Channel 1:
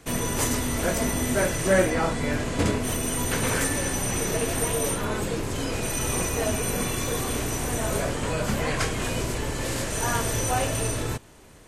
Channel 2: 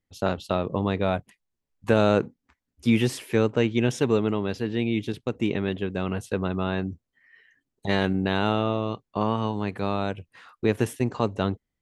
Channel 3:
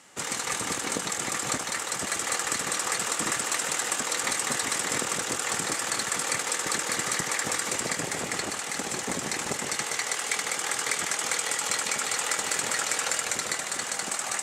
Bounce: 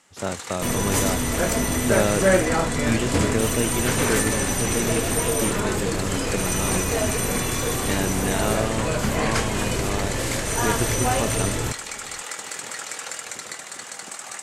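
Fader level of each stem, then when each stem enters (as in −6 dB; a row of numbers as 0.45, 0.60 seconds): +2.5, −3.0, −5.0 decibels; 0.55, 0.00, 0.00 seconds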